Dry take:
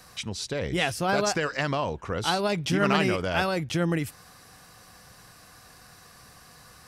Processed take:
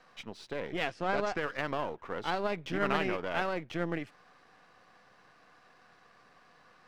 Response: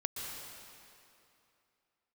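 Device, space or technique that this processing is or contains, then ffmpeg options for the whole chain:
crystal radio: -filter_complex "[0:a]highpass=250,lowpass=2.6k,aeval=exprs='if(lt(val(0),0),0.447*val(0),val(0))':c=same,asettb=1/sr,asplit=3[a][b][c];[a]atrim=end=0.884[d];[b]atrim=start=0.88:end=1.37,asetpts=PTS-STARTPTS,afade=t=in:d=0.004:c=qsin,afade=t=out:st=0.486:d=0.004:c=qsin,lowpass=f=9k:w=0.5412,lowpass=f=9k:w=1.3066[e];[c]atrim=start=1.366[f];[d][e]acrossfade=d=0.004:c1=hsin:c2=qsin[g];[g][f]acrossfade=d=0.004:c1=qsin:c2=hsin,volume=-3.5dB"

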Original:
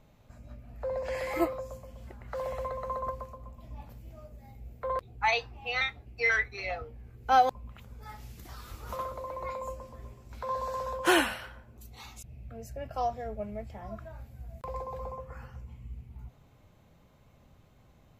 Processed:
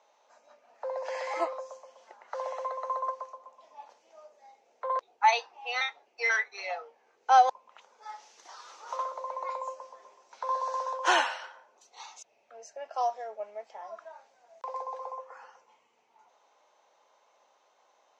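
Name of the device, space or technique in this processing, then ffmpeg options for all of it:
phone speaker on a table: -af "highpass=f=500:w=0.5412,highpass=f=500:w=1.3066,equalizer=f=910:t=q:w=4:g=8,equalizer=f=2.3k:t=q:w=4:g=-3,equalizer=f=6.1k:t=q:w=4:g=9,lowpass=f=6.5k:w=0.5412,lowpass=f=6.5k:w=1.3066"

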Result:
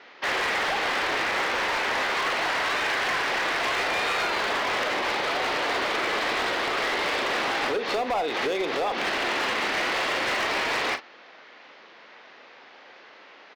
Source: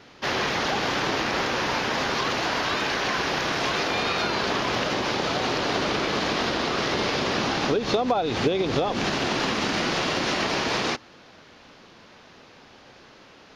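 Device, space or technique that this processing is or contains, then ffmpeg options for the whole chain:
megaphone: -filter_complex "[0:a]highpass=460,lowpass=3.7k,equalizer=f=2k:t=o:w=0.42:g=5,asoftclip=type=hard:threshold=-24dB,asplit=2[a][b];[b]adelay=40,volume=-10.5dB[c];[a][c]amix=inputs=2:normalize=0,volume=1.5dB"

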